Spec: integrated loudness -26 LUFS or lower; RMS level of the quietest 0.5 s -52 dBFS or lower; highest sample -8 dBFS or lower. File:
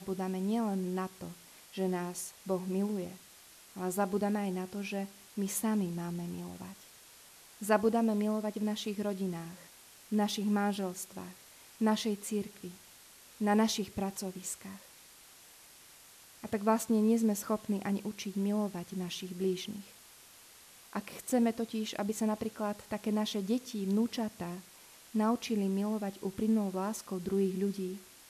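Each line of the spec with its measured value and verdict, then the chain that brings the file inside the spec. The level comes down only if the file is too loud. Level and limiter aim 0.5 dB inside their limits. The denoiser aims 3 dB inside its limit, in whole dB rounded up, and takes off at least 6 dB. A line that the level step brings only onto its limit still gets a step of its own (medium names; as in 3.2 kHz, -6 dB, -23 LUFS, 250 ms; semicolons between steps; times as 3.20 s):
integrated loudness -34.0 LUFS: pass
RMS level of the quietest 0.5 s -57 dBFS: pass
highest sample -12.5 dBFS: pass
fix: none needed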